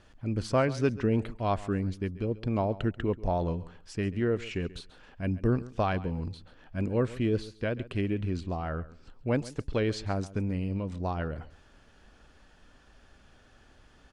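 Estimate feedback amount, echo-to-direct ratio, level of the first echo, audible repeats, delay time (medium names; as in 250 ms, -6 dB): 17%, -18.0 dB, -18.0 dB, 2, 136 ms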